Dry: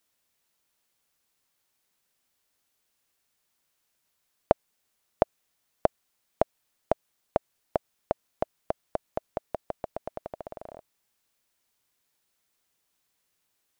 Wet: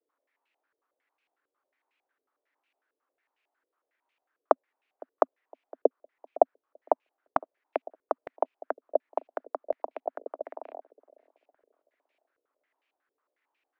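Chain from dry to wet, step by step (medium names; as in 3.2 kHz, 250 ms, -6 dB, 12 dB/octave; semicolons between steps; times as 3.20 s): steep high-pass 260 Hz 96 dB/octave; feedback echo behind a low-pass 510 ms, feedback 33%, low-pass 620 Hz, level -18.5 dB; step-sequenced low-pass 11 Hz 460–2500 Hz; trim -2.5 dB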